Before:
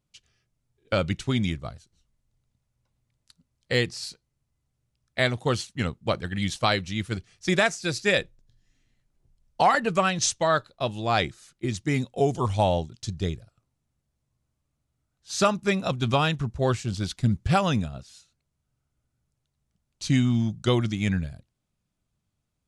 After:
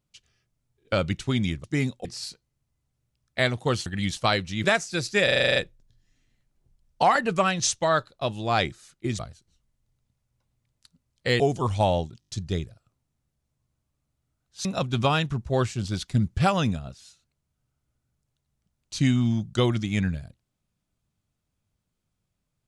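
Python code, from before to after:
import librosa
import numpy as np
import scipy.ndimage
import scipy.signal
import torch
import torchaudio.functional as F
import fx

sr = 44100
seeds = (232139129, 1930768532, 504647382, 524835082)

y = fx.edit(x, sr, fx.swap(start_s=1.64, length_s=2.21, other_s=11.78, other_length_s=0.41),
    fx.cut(start_s=5.66, length_s=0.59),
    fx.cut(start_s=7.03, length_s=0.52),
    fx.stutter(start_s=8.15, slice_s=0.04, count=9),
    fx.stutter(start_s=12.99, slice_s=0.02, count=5),
    fx.cut(start_s=15.36, length_s=0.38), tone=tone)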